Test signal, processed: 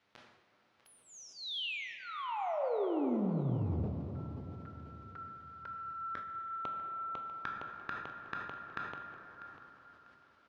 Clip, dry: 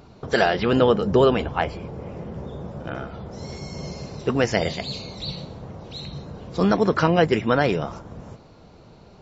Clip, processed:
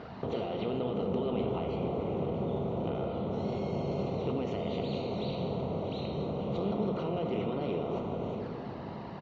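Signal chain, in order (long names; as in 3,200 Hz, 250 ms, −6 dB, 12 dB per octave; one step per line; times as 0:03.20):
compressor on every frequency bin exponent 0.6
high-pass filter 120 Hz 6 dB per octave
high-shelf EQ 3,300 Hz +2.5 dB
brickwall limiter −10 dBFS
downward compressor, threshold −22 dBFS
flanger swept by the level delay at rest 11.1 ms, full sweep at −26.5 dBFS
high-frequency loss of the air 280 metres
repeating echo 645 ms, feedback 28%, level −16 dB
dense smooth reverb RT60 4.4 s, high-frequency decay 0.3×, DRR 2.5 dB
level that may fall only so fast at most 55 dB per second
level −7 dB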